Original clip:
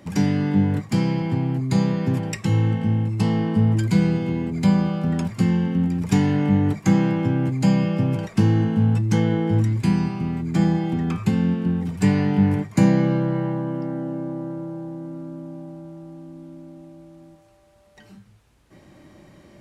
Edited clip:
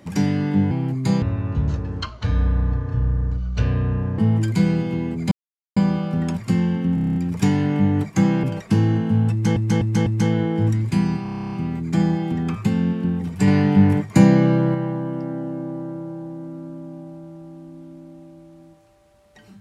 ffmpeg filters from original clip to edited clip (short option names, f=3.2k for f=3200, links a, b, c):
-filter_complex "[0:a]asplit=28[a][b][c][d][e][f][g][h][i][j][k][l][m][n][o][p][q][r][s][t][u][v][w][x][y][z][aa][ab];[a]atrim=end=0.712[ac];[b]atrim=start=1.368:end=1.884[ad];[c]atrim=start=1.88:end=3.54,asetpts=PTS-STARTPTS,asetrate=24696,aresample=44100[ae];[d]atrim=start=3.536:end=4.67,asetpts=PTS-STARTPTS,afade=t=out:st=1.13:d=0.004:c=hsin,apad=pad_dur=0.45[af];[e]atrim=start=4.67:end=5.882,asetpts=PTS-STARTPTS,afade=t=in:d=0.004:c=hsin[ag];[f]atrim=start=5.848:end=5.882[ah];[g]atrim=start=5.848:end=5.882[ai];[h]atrim=start=5.848:end=5.882[aj];[i]atrim=start=5.848:end=5.882[ak];[j]atrim=start=5.848:end=5.882[al];[k]atrim=start=5.848:end=5.882[am];[l]atrim=start=5.848:end=7.132[an];[m]atrim=start=8.098:end=9.232[ao];[n]atrim=start=8.978:end=9.232[ap];[o]atrim=start=8.978:end=9.232[aq];[p]atrim=start=8.978:end=10.172[ar];[q]atrim=start=10.138:end=10.172[as];[r]atrim=start=10.138:end=10.172[at];[s]atrim=start=10.138:end=10.172[au];[t]atrim=start=10.138:end=10.172[av];[u]atrim=start=10.138:end=10.172[aw];[v]atrim=start=10.138:end=10.172[ax];[w]atrim=start=10.138:end=10.172[ay];[x]atrim=start=10.138:end=10.172[az];[y]atrim=start=10.138:end=10.172[ba];[z]atrim=start=10.138:end=12.092[bb];[aa]atrim=start=12.088:end=13.362,asetpts=PTS-STARTPTS,volume=3.5dB[bc];[ab]atrim=start=13.358[bd];[ac][ad]acrossfade=d=0.004:c1=hsin:c2=hsin[be];[be][ae]acrossfade=d=0.004:c1=hsin:c2=hsin[bf];[af][ag]concat=n=2:v=0:a=1[bg];[bf][bg]acrossfade=d=0.004:c1=hsin:c2=hsin[bh];[bh][ah]acrossfade=d=0.004:c1=hsin:c2=hsin[bi];[bi][ai]acrossfade=d=0.004:c1=hsin:c2=hsin[bj];[bj][aj]acrossfade=d=0.004:c1=hsin:c2=hsin[bk];[bk][ak]acrossfade=d=0.004:c1=hsin:c2=hsin[bl];[bl][al]acrossfade=d=0.004:c1=hsin:c2=hsin[bm];[bm][am]acrossfade=d=0.004:c1=hsin:c2=hsin[bn];[bn][an]acrossfade=d=0.004:c1=hsin:c2=hsin[bo];[bo][ao]acrossfade=d=0.004:c1=hsin:c2=hsin[bp];[bp][ap]acrossfade=d=0.004:c1=hsin:c2=hsin[bq];[bq][aq]acrossfade=d=0.004:c1=hsin:c2=hsin[br];[br][ar]acrossfade=d=0.004:c1=hsin:c2=hsin[bs];[bs][as]acrossfade=d=0.004:c1=hsin:c2=hsin[bt];[bt][at]acrossfade=d=0.004:c1=hsin:c2=hsin[bu];[bu][au]acrossfade=d=0.004:c1=hsin:c2=hsin[bv];[bv][av]acrossfade=d=0.004:c1=hsin:c2=hsin[bw];[bw][aw]acrossfade=d=0.004:c1=hsin:c2=hsin[bx];[bx][ax]acrossfade=d=0.004:c1=hsin:c2=hsin[by];[by][ay]acrossfade=d=0.004:c1=hsin:c2=hsin[bz];[bz][az]acrossfade=d=0.004:c1=hsin:c2=hsin[ca];[ca][ba]acrossfade=d=0.004:c1=hsin:c2=hsin[cb];[cb][bb]acrossfade=d=0.004:c1=hsin:c2=hsin[cc];[cc][bc]acrossfade=d=0.004:c1=hsin:c2=hsin[cd];[cd][bd]acrossfade=d=0.004:c1=hsin:c2=hsin"